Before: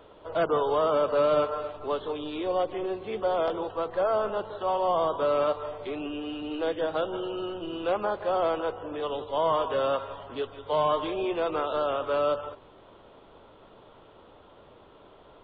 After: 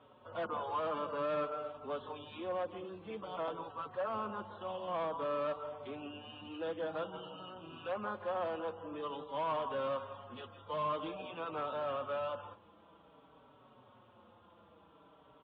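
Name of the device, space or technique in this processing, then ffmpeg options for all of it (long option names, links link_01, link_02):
barber-pole flanger into a guitar amplifier: -filter_complex "[0:a]asplit=2[link_01][link_02];[link_02]adelay=4.9,afreqshift=-0.51[link_03];[link_01][link_03]amix=inputs=2:normalize=1,asoftclip=type=tanh:threshold=-24dB,highpass=92,equalizer=frequency=110:width_type=q:width=4:gain=4,equalizer=frequency=220:width_type=q:width=4:gain=5,equalizer=frequency=390:width_type=q:width=4:gain=-8,equalizer=frequency=660:width_type=q:width=4:gain=-3,equalizer=frequency=1100:width_type=q:width=4:gain=3,equalizer=frequency=2000:width_type=q:width=4:gain=-5,lowpass=frequency=3600:width=0.5412,lowpass=frequency=3600:width=1.3066,volume=-4.5dB"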